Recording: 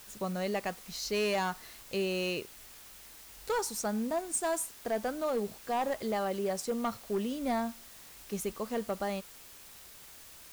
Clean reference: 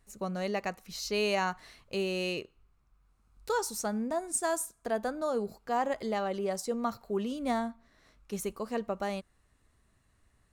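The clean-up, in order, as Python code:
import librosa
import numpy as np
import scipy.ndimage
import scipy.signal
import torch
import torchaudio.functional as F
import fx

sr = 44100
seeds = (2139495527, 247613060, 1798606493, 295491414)

y = fx.fix_declip(x, sr, threshold_db=-25.5)
y = fx.noise_reduce(y, sr, print_start_s=9.52, print_end_s=10.02, reduce_db=16.0)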